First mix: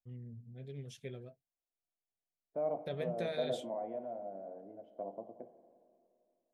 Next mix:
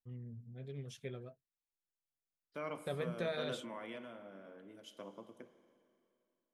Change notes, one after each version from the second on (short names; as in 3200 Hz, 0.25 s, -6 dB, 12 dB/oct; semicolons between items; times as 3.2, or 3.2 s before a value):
second voice: remove synth low-pass 710 Hz, resonance Q 8.2; master: add bell 1200 Hz +8 dB 0.7 oct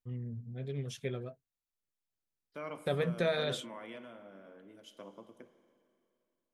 first voice +7.5 dB